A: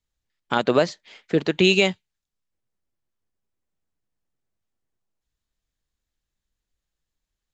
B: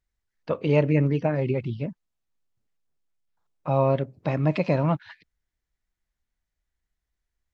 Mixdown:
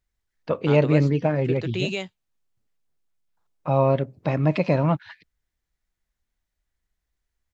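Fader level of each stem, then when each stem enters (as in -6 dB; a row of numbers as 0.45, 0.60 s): -11.0, +2.0 dB; 0.15, 0.00 s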